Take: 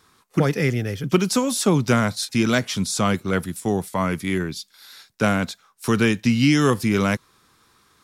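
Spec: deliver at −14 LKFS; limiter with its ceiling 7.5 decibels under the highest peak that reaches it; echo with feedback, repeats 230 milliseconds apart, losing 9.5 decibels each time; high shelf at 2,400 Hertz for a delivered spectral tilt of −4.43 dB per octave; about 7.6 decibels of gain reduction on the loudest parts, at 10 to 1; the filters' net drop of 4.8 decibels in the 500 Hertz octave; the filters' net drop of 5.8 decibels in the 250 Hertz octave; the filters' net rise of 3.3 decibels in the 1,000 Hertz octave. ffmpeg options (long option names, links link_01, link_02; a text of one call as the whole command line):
ffmpeg -i in.wav -af "equalizer=frequency=250:width_type=o:gain=-6.5,equalizer=frequency=500:width_type=o:gain=-5.5,equalizer=frequency=1000:width_type=o:gain=7,highshelf=frequency=2400:gain=-5,acompressor=threshold=-23dB:ratio=10,alimiter=limit=-19dB:level=0:latency=1,aecho=1:1:230|460|690|920:0.335|0.111|0.0365|0.012,volume=16dB" out.wav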